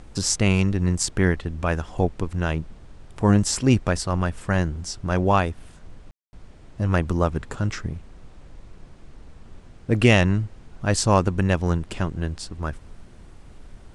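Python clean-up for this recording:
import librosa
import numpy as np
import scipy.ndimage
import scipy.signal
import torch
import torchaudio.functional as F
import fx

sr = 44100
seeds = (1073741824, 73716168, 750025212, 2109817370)

y = fx.fix_ambience(x, sr, seeds[0], print_start_s=13.06, print_end_s=13.56, start_s=6.11, end_s=6.33)
y = fx.noise_reduce(y, sr, print_start_s=13.06, print_end_s=13.56, reduce_db=22.0)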